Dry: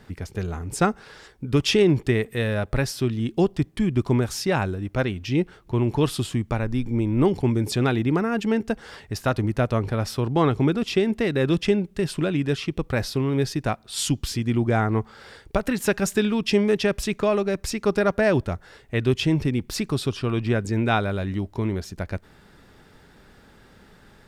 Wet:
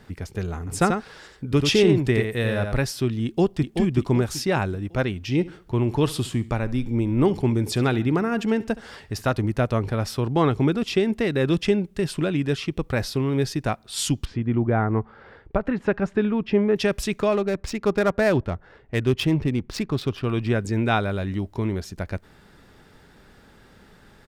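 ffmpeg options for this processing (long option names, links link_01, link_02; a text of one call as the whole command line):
ffmpeg -i in.wav -filter_complex "[0:a]asettb=1/sr,asplit=3[link_01][link_02][link_03];[link_01]atrim=end=0.584[link_04];[link_02]atrim=start=0.58:end=2.73,asetpts=PTS-STARTPTS,afade=type=in:duration=0.004:curve=qsin,afade=type=out:start_time=2.146:duration=0.004:curve=qsin,aecho=1:1:88:0.531,atrim=end_sample=94815[link_05];[link_03]atrim=start=2.726[link_06];[link_04][link_05]acrossfade=duration=0.004:curve1=hsin:curve2=qsin[link_07];[link_07][link_06]acrossfade=duration=0.004:curve1=qsin:curve2=hsin,asplit=2[link_08][link_09];[link_09]afade=type=in:start_time=3.24:duration=0.01,afade=type=out:start_time=3.74:duration=0.01,aecho=0:1:380|760|1140|1520|1900:0.501187|0.200475|0.08019|0.032076|0.0128304[link_10];[link_08][link_10]amix=inputs=2:normalize=0,asettb=1/sr,asplit=3[link_11][link_12][link_13];[link_11]atrim=end=5.214[link_14];[link_12]atrim=start=5.21:end=9.31,asetpts=PTS-STARTPTS,afade=type=in:duration=0.004:curve=qsin,afade=type=out:start_time=4.096:duration=0.004:curve=qsin,aecho=1:1:69|138|207:0.112|0.046|0.0189,atrim=end_sample=180810[link_15];[link_13]atrim=start=9.306[link_16];[link_14][link_15]acrossfade=duration=0.004:curve1=hsin:curve2=qsin[link_17];[link_17][link_16]acrossfade=duration=0.004:curve1=qsin:curve2=hsin,asettb=1/sr,asplit=3[link_18][link_19][link_20];[link_18]atrim=end=14.254[link_21];[link_19]atrim=start=14.25:end=16.76,asetpts=PTS-STARTPTS,afade=type=in:duration=0.004:curve=qsin,afade=type=out:start_time=2.506:duration=0.004:curve=qsin,lowpass=1700[link_22];[link_20]atrim=start=16.756[link_23];[link_21][link_22]acrossfade=duration=0.004:curve1=hsin:curve2=qsin[link_24];[link_24][link_23]acrossfade=duration=0.004:curve1=qsin:curve2=hsin,asettb=1/sr,asplit=3[link_25][link_26][link_27];[link_25]atrim=end=17.324[link_28];[link_26]atrim=start=17.32:end=20.25,asetpts=PTS-STARTPTS,afade=type=in:duration=0.004:curve=qsin,afade=type=out:start_time=2.926:duration=0.004:curve=qsin,adynamicsmooth=sensitivity=5:basefreq=1900[link_29];[link_27]atrim=start=20.246[link_30];[link_28][link_29]acrossfade=duration=0.004:curve1=hsin:curve2=qsin[link_31];[link_31][link_30]acrossfade=duration=0.004:curve1=qsin:curve2=hsin" out.wav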